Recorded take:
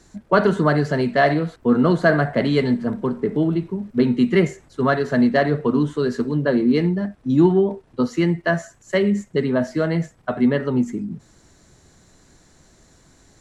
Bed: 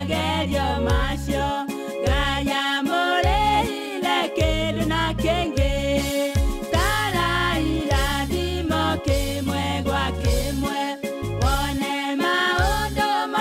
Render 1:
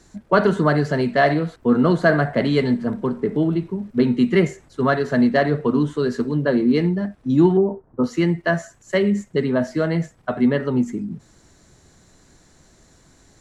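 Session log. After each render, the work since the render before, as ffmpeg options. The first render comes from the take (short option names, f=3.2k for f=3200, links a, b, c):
-filter_complex "[0:a]asettb=1/sr,asplit=3[a][b][c];[a]atrim=end=7.574[d];[b]atrim=start=7.57:end=8.04,asetpts=PTS-STARTPTS,afade=t=in:d=0.004:c=qsin,afade=t=out:st=0.466:d=0.004:c=qsin,lowpass=f=1.3k:w=0.5412,lowpass=f=1.3k:w=1.3066[e];[c]atrim=start=8.036[f];[d][e]acrossfade=d=0.004:c1=hsin:c2=qsin[g];[g][f]acrossfade=d=0.004:c1=qsin:c2=hsin"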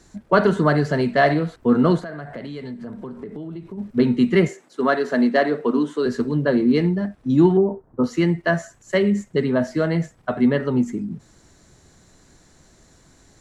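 -filter_complex "[0:a]asplit=3[a][b][c];[a]afade=t=out:st=1.99:d=0.02[d];[b]acompressor=threshold=-31dB:ratio=5:attack=3.2:release=140:knee=1:detection=peak,afade=t=in:st=1.99:d=0.02,afade=t=out:st=3.77:d=0.02[e];[c]afade=t=in:st=3.77:d=0.02[f];[d][e][f]amix=inputs=3:normalize=0,asettb=1/sr,asplit=3[g][h][i];[g]atrim=end=4.484[j];[h]atrim=start=4.48:end=6.06,asetpts=PTS-STARTPTS,afade=t=in:d=0.004:c=qsin,afade=t=out:st=1.576:d=0.004:c=qsin,highpass=f=220:w=0.5412,highpass=f=220:w=1.3066[k];[i]atrim=start=6.056[l];[j][k]acrossfade=d=0.004:c1=hsin:c2=qsin[m];[m][l]acrossfade=d=0.004:c1=qsin:c2=hsin"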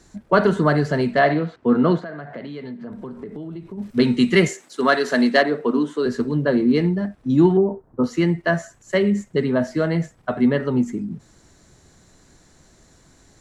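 -filter_complex "[0:a]asettb=1/sr,asplit=3[a][b][c];[a]atrim=end=1.194[d];[b]atrim=start=1.19:end=2.92,asetpts=PTS-STARTPTS,afade=t=in:d=0.004:c=qsin,afade=t=out:st=1.726:d=0.004:c=qsin,highpass=130,lowpass=4.2k[e];[c]atrim=start=2.916[f];[d][e]acrossfade=d=0.004:c1=hsin:c2=qsin[g];[g][f]acrossfade=d=0.004:c1=qsin:c2=hsin,asplit=3[h][i][j];[h]afade=t=out:st=3.81:d=0.02[k];[i]highshelf=f=2.1k:g=11.5,afade=t=in:st=3.81:d=0.02,afade=t=out:st=5.41:d=0.02[l];[j]afade=t=in:st=5.41:d=0.02[m];[k][l][m]amix=inputs=3:normalize=0"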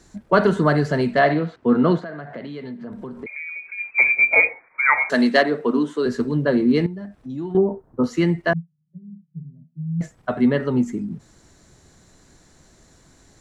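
-filter_complex "[0:a]asettb=1/sr,asplit=3[a][b][c];[a]atrim=end=3.264[d];[b]atrim=start=3.26:end=5.1,asetpts=PTS-STARTPTS,afade=t=in:d=0.004:c=qsin,afade=t=out:st=1.836:d=0.004:c=qsin,lowpass=f=2.2k:t=q:w=0.5098,lowpass=f=2.2k:t=q:w=0.6013,lowpass=f=2.2k:t=q:w=0.9,lowpass=f=2.2k:t=q:w=2.563,afreqshift=-2600[e];[c]atrim=start=5.096[f];[d][e]acrossfade=d=0.004:c1=hsin:c2=qsin[g];[g][f]acrossfade=d=0.004:c1=qsin:c2=hsin,asettb=1/sr,asplit=3[h][i][j];[h]atrim=end=6.864[k];[i]atrim=start=6.86:end=7.55,asetpts=PTS-STARTPTS,afade=t=in:d=0.004:c=qsin,afade=t=out:st=0.686:d=0.004:c=qsin,acompressor=threshold=-38dB:ratio=2:attack=3.2:release=140:knee=1:detection=peak[l];[j]atrim=start=7.546[m];[k][l]acrossfade=d=0.004:c1=hsin:c2=qsin[n];[n][m]acrossfade=d=0.004:c1=qsin:c2=hsin,asettb=1/sr,asplit=3[o][p][q];[o]atrim=end=8.534[r];[p]atrim=start=8.53:end=10.01,asetpts=PTS-STARTPTS,afade=t=in:d=0.004:c=qsin,afade=t=out:st=1.476:d=0.004:c=qsin,asuperpass=centerf=160:order=4:qfactor=6.7[s];[q]atrim=start=10.006[t];[r][s]acrossfade=d=0.004:c1=hsin:c2=qsin[u];[u][t]acrossfade=d=0.004:c1=qsin:c2=hsin"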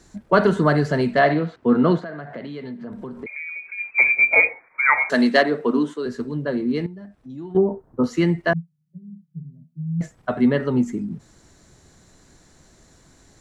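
-filter_complex "[0:a]asplit=3[a][b][c];[a]atrim=end=5.942[d];[b]atrim=start=5.938:end=7.562,asetpts=PTS-STARTPTS,volume=-5.5dB[e];[c]atrim=start=7.558[f];[d][e]acrossfade=d=0.004:c1=hsin:c2=hsin[g];[g][f]acrossfade=d=0.004:c1=hsin:c2=hsin"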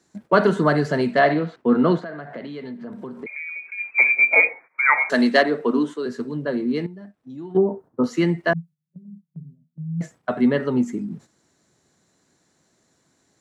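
-af "agate=range=-10dB:threshold=-41dB:ratio=16:detection=peak,highpass=150"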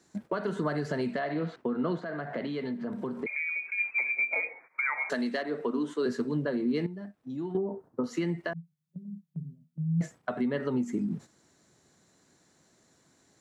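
-af "acompressor=threshold=-22dB:ratio=12,alimiter=limit=-20dB:level=0:latency=1:release=439"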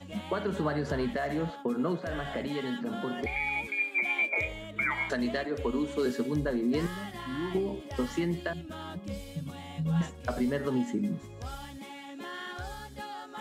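-filter_complex "[1:a]volume=-19.5dB[a];[0:a][a]amix=inputs=2:normalize=0"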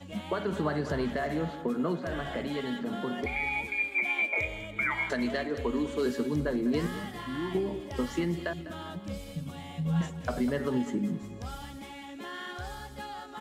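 -af "aecho=1:1:200|400|600|800:0.2|0.0858|0.0369|0.0159"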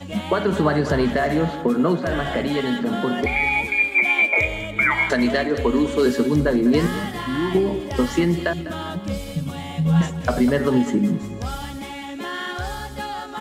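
-af "volume=11dB"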